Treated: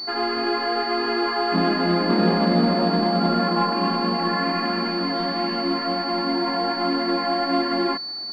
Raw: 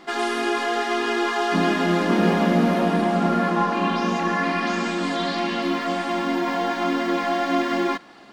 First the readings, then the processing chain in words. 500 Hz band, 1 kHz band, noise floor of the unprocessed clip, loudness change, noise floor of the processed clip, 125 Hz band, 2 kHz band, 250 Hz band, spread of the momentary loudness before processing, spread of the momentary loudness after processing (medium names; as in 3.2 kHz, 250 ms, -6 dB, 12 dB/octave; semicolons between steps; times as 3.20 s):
0.0 dB, -0.5 dB, -39 dBFS, +0.5 dB, -31 dBFS, 0.0 dB, -3.0 dB, 0.0 dB, 5 LU, 5 LU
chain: class-D stage that switches slowly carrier 4.5 kHz